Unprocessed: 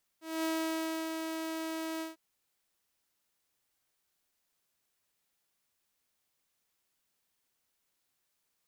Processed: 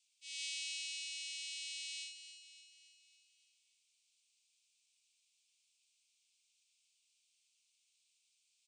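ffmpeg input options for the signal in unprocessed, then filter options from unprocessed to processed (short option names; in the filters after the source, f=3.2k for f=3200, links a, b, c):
-f lavfi -i "aevalsrc='0.0422*(2*mod(322*t,1)-1)':d=1.95:s=44100,afade=t=in:d=0.225,afade=t=out:st=0.225:d=0.656:silence=0.562,afade=t=out:st=1.8:d=0.15"
-filter_complex "[0:a]asplit=2[a][b];[b]acompressor=threshold=-44dB:ratio=6,volume=0.5dB[c];[a][c]amix=inputs=2:normalize=0,asuperpass=centerf=4800:order=20:qfactor=0.7,aecho=1:1:285|570|855|1140|1425|1710:0.299|0.167|0.0936|0.0524|0.0294|0.0164"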